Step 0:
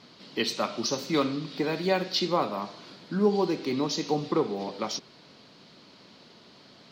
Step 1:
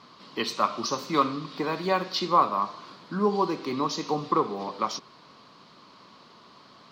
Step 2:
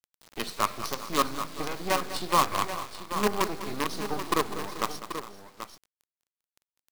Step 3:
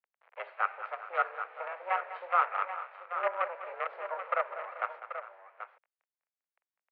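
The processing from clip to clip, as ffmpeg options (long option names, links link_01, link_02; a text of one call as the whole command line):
ffmpeg -i in.wav -af "equalizer=frequency=1100:width_type=o:width=0.49:gain=14.5,volume=-2dB" out.wav
ffmpeg -i in.wav -af "acrusher=bits=4:dc=4:mix=0:aa=0.000001,aecho=1:1:200|397|432|784:0.224|0.133|0.106|0.316,volume=-2.5dB" out.wav
ffmpeg -i in.wav -af "highpass=frequency=350:width_type=q:width=0.5412,highpass=frequency=350:width_type=q:width=1.307,lowpass=frequency=2200:width_type=q:width=0.5176,lowpass=frequency=2200:width_type=q:width=0.7071,lowpass=frequency=2200:width_type=q:width=1.932,afreqshift=180,volume=-3dB" out.wav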